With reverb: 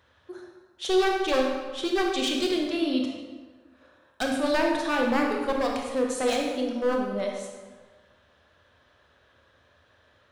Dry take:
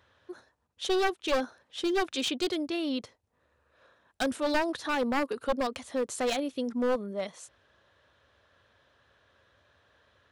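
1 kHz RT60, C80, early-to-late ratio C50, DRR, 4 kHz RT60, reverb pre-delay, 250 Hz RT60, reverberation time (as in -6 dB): 1.4 s, 4.5 dB, 2.5 dB, 0.5 dB, 1.0 s, 24 ms, 1.5 s, 1.4 s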